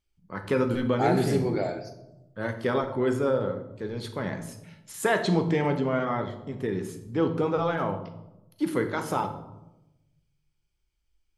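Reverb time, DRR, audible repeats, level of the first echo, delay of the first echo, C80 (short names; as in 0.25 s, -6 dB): 0.95 s, 6.0 dB, none, none, none, 12.5 dB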